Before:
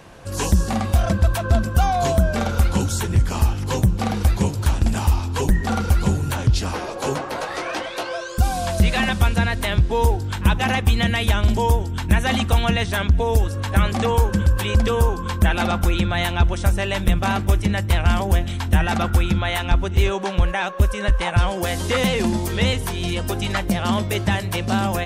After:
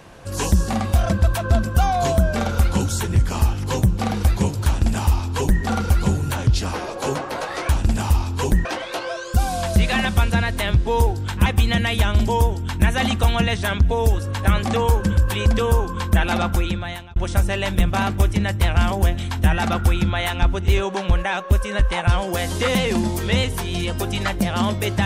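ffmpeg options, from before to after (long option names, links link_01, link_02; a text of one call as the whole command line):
ffmpeg -i in.wav -filter_complex "[0:a]asplit=5[link_01][link_02][link_03][link_04][link_05];[link_01]atrim=end=7.692[link_06];[link_02]atrim=start=4.658:end=5.622[link_07];[link_03]atrim=start=7.688:end=10.502[link_08];[link_04]atrim=start=10.748:end=16.45,asetpts=PTS-STARTPTS,afade=type=out:start_time=5.032:duration=0.67[link_09];[link_05]atrim=start=16.45,asetpts=PTS-STARTPTS,afade=type=in:duration=0.004:curve=hsin[link_10];[link_06][link_07]acrossfade=duration=0.004:curve1=hsin:curve2=hsin[link_11];[link_11][link_08]acrossfade=duration=0.004:curve1=hsin:curve2=hsin[link_12];[link_09][link_10]concat=n=2:v=0:a=1[link_13];[link_12][link_13]acrossfade=duration=0.004:curve1=hsin:curve2=hsin" out.wav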